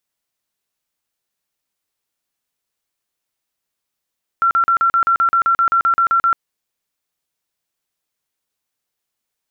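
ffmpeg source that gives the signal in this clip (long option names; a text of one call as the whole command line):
ffmpeg -f lavfi -i "aevalsrc='0.282*sin(2*PI*1360*mod(t,0.13))*lt(mod(t,0.13),121/1360)':duration=1.95:sample_rate=44100" out.wav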